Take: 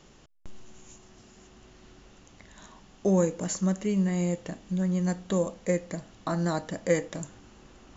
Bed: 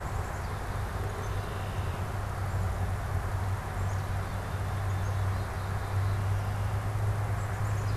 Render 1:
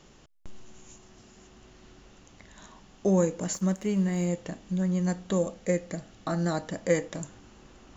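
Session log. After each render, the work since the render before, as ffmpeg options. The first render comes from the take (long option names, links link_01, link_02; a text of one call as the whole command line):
ffmpeg -i in.wav -filter_complex "[0:a]asettb=1/sr,asplit=3[link_01][link_02][link_03];[link_01]atrim=end=3.534[link_04];[link_02]atrim=start=3.53:end=4.28,asetpts=PTS-STARTPTS,afade=type=in:duration=0.004:curve=qsin,afade=type=out:start_time=0.746:duration=0.004:curve=qsin,aeval=exprs='sgn(val(0))*max(abs(val(0))-0.00376,0)':channel_layout=same[link_05];[link_03]atrim=start=4.276[link_06];[link_04][link_05]acrossfade=duration=0.004:curve1=hsin:curve2=qsin[link_07];[link_07][link_06]acrossfade=duration=0.004:curve1=qsin:curve2=hsin,asettb=1/sr,asplit=3[link_08][link_09][link_10];[link_08]atrim=end=5.394[link_11];[link_09]atrim=start=5.39:end=6.62,asetpts=PTS-STARTPTS,afade=type=in:duration=0.004:curve=qsin,afade=type=out:start_time=1.226:duration=0.004:curve=qsin,bandreject=frequency=1000:width=7.1[link_12];[link_10]atrim=start=6.616[link_13];[link_11][link_12]acrossfade=duration=0.004:curve1=hsin:curve2=qsin[link_14];[link_14][link_13]acrossfade=duration=0.004:curve1=qsin:curve2=hsin" out.wav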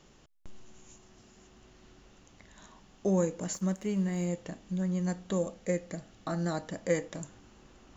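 ffmpeg -i in.wav -af "volume=-4dB" out.wav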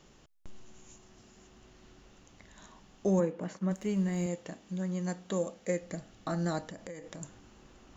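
ffmpeg -i in.wav -filter_complex "[0:a]asplit=3[link_01][link_02][link_03];[link_01]afade=type=out:start_time=3.19:duration=0.02[link_04];[link_02]highpass=140,lowpass=2600,afade=type=in:start_time=3.19:duration=0.02,afade=type=out:start_time=3.7:duration=0.02[link_05];[link_03]afade=type=in:start_time=3.7:duration=0.02[link_06];[link_04][link_05][link_06]amix=inputs=3:normalize=0,asettb=1/sr,asplit=3[link_07][link_08][link_09];[link_07]atrim=end=4.264[link_10];[link_08]atrim=start=4.26:end=5.82,asetpts=PTS-STARTPTS,afade=type=in:duration=0.004:curve=qsin,afade=type=out:start_time=1.556:duration=0.004:curve=qsin,highpass=frequency=200:poles=1[link_11];[link_09]atrim=start=5.816[link_12];[link_10][link_11]acrossfade=duration=0.004:curve1=hsin:curve2=qsin[link_13];[link_13][link_12]acrossfade=duration=0.004:curve1=qsin:curve2=hsin,asplit=3[link_14][link_15][link_16];[link_14]afade=type=out:start_time=6.68:duration=0.02[link_17];[link_15]acompressor=threshold=-40dB:ratio=8:attack=3.2:release=140:knee=1:detection=peak,afade=type=in:start_time=6.68:duration=0.02,afade=type=out:start_time=7.21:duration=0.02[link_18];[link_16]afade=type=in:start_time=7.21:duration=0.02[link_19];[link_17][link_18][link_19]amix=inputs=3:normalize=0" out.wav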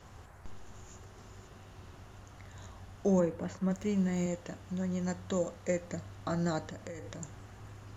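ffmpeg -i in.wav -i bed.wav -filter_complex "[1:a]volume=-19.5dB[link_01];[0:a][link_01]amix=inputs=2:normalize=0" out.wav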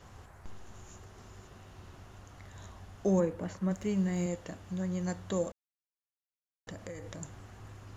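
ffmpeg -i in.wav -filter_complex "[0:a]asplit=3[link_01][link_02][link_03];[link_01]atrim=end=5.52,asetpts=PTS-STARTPTS,afade=type=out:start_time=5.516:duration=0.004:curve=hsin[link_04];[link_02]atrim=start=5.52:end=6.67,asetpts=PTS-STARTPTS,volume=0[link_05];[link_03]atrim=start=6.67,asetpts=PTS-STARTPTS,afade=type=in:duration=0.004:curve=hsin[link_06];[link_04][link_05][link_06]concat=n=3:v=0:a=1" out.wav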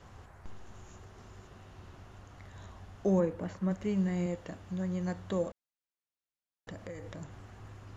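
ffmpeg -i in.wav -filter_complex "[0:a]acrossover=split=5300[link_01][link_02];[link_02]acompressor=threshold=-56dB:ratio=4:attack=1:release=60[link_03];[link_01][link_03]amix=inputs=2:normalize=0,highshelf=frequency=6900:gain=-8.5" out.wav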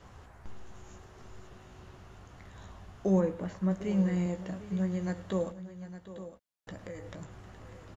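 ffmpeg -i in.wav -filter_complex "[0:a]asplit=2[link_01][link_02];[link_02]adelay=16,volume=-9dB[link_03];[link_01][link_03]amix=inputs=2:normalize=0,aecho=1:1:105|751|858:0.119|0.168|0.211" out.wav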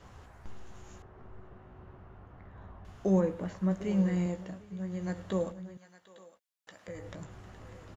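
ffmpeg -i in.wav -filter_complex "[0:a]asettb=1/sr,asplit=3[link_01][link_02][link_03];[link_01]atrim=end=1.024[link_04];[link_02]atrim=start=1.02:end=2.85,asetpts=PTS-STARTPTS,afade=type=in:duration=0.004:curve=qsin,afade=type=out:start_time=1.826:duration=0.004:curve=qsin,lowpass=1500[link_05];[link_03]atrim=start=2.846[link_06];[link_04][link_05]acrossfade=duration=0.004:curve1=hsin:curve2=qsin[link_07];[link_07][link_06]acrossfade=duration=0.004:curve1=qsin:curve2=hsin,asettb=1/sr,asplit=3[link_08][link_09][link_10];[link_08]atrim=end=5.774[link_11];[link_09]atrim=start=5.77:end=6.88,asetpts=PTS-STARTPTS,afade=type=in:duration=0.004:curve=qsin,afade=type=out:start_time=1.106:duration=0.004:curve=qsin,highpass=frequency=1400:poles=1[link_12];[link_10]atrim=start=6.876[link_13];[link_11][link_12]acrossfade=duration=0.004:curve1=hsin:curve2=qsin[link_14];[link_14][link_13]acrossfade=duration=0.004:curve1=qsin:curve2=hsin,asplit=3[link_15][link_16][link_17];[link_15]atrim=end=4.67,asetpts=PTS-STARTPTS,afade=type=out:start_time=4.26:duration=0.41:silence=0.375837[link_18];[link_16]atrim=start=4.67:end=4.78,asetpts=PTS-STARTPTS,volume=-8.5dB[link_19];[link_17]atrim=start=4.78,asetpts=PTS-STARTPTS,afade=type=in:duration=0.41:silence=0.375837[link_20];[link_18][link_19][link_20]concat=n=3:v=0:a=1" out.wav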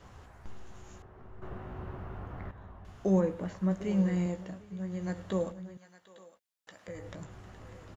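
ffmpeg -i in.wav -filter_complex "[0:a]asplit=3[link_01][link_02][link_03];[link_01]atrim=end=1.422[link_04];[link_02]atrim=start=1.418:end=2.512,asetpts=PTS-STARTPTS,volume=10dB[link_05];[link_03]atrim=start=2.508[link_06];[link_04][link_05]acrossfade=duration=0.004:curve1=hsin:curve2=hsin[link_07];[link_07][link_06]acrossfade=duration=0.004:curve1=hsin:curve2=hsin" out.wav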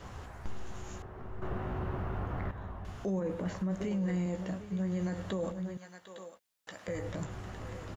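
ffmpeg -i in.wav -filter_complex "[0:a]asplit=2[link_01][link_02];[link_02]acompressor=threshold=-37dB:ratio=6,volume=1.5dB[link_03];[link_01][link_03]amix=inputs=2:normalize=0,alimiter=level_in=2.5dB:limit=-24dB:level=0:latency=1:release=12,volume=-2.5dB" out.wav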